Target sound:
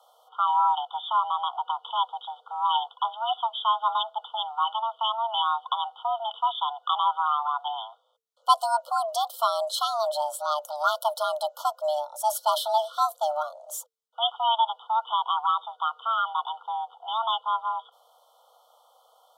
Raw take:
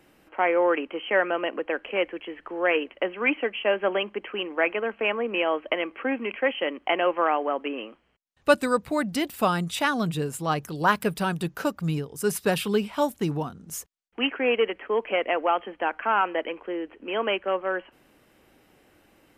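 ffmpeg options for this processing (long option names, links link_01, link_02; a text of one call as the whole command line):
ffmpeg -i in.wav -af "afftfilt=real='re*(1-between(b*sr/4096,1000,2500))':imag='im*(1-between(b*sr/4096,1000,2500))':win_size=4096:overlap=0.75,afreqshift=450,adynamicequalizer=threshold=0.00355:dfrequency=4100:dqfactor=5.3:tfrequency=4100:tqfactor=5.3:attack=5:release=100:ratio=0.375:range=2:mode=boostabove:tftype=bell" out.wav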